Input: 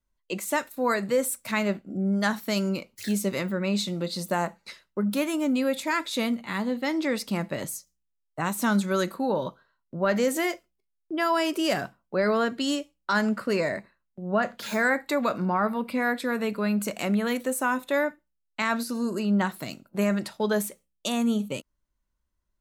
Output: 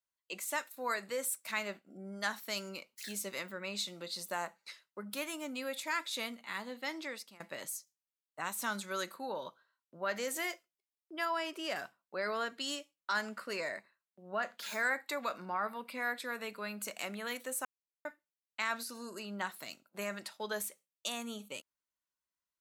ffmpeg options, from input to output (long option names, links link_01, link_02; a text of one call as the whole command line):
ffmpeg -i in.wav -filter_complex "[0:a]asettb=1/sr,asplit=3[link_01][link_02][link_03];[link_01]atrim=end=11.254[link_04];[link_02]atrim=start=11.25:end=11.76,asetpts=PTS-STARTPTS,afade=type=in:duration=0.004:curve=qsin,afade=type=out:start_time=0.506:duration=0.004:curve=qsin,highshelf=frequency=4900:gain=-11.5[link_05];[link_03]atrim=start=11.756[link_06];[link_04][link_05]acrossfade=duration=0.004:curve1=hsin:curve2=qsin[link_07];[link_07][link_06]acrossfade=duration=0.004:curve1=qsin:curve2=hsin,asplit=4[link_08][link_09][link_10][link_11];[link_08]atrim=end=7.4,asetpts=PTS-STARTPTS,afade=type=out:start_time=6.95:duration=0.45:silence=0.0707946[link_12];[link_09]atrim=start=7.4:end=17.65,asetpts=PTS-STARTPTS,afade=type=in:duration=0.004:curve=hsin:silence=0.0707946,afade=type=out:start_time=10.246:duration=0.004:curve=hsin[link_13];[link_10]atrim=start=17.65:end=18.05,asetpts=PTS-STARTPTS,volume=0[link_14];[link_11]atrim=start=18.05,asetpts=PTS-STARTPTS,afade=type=in:duration=0.004:curve=hsin[link_15];[link_12][link_13][link_14][link_15]concat=n=4:v=0:a=1,highpass=frequency=1200:poles=1,volume=-5.5dB" out.wav